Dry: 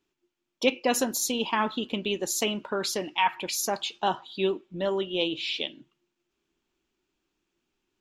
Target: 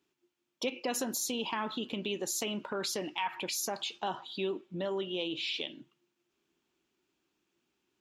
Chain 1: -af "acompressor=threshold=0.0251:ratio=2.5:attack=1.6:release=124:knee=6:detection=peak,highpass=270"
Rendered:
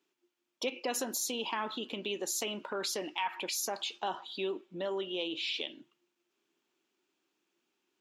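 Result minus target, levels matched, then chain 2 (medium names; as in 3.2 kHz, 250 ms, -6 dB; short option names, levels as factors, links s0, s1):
125 Hz band -6.5 dB
-af "acompressor=threshold=0.0251:ratio=2.5:attack=1.6:release=124:knee=6:detection=peak,highpass=90"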